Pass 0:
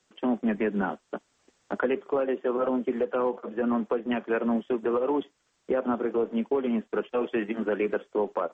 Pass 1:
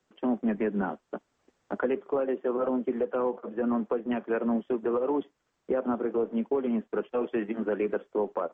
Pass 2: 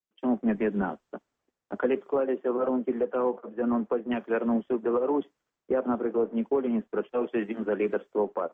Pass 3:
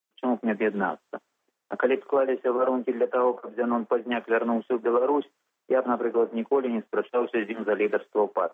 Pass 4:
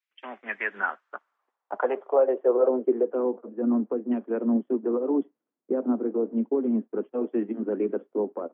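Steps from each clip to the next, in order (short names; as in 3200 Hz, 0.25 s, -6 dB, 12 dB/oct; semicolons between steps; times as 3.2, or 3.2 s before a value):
high shelf 2400 Hz -11 dB; gain -1 dB
three-band expander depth 70%; gain +1.5 dB
HPF 610 Hz 6 dB/oct; gain +7.5 dB
band-pass sweep 2200 Hz -> 260 Hz, 0.43–3.4; gain +5.5 dB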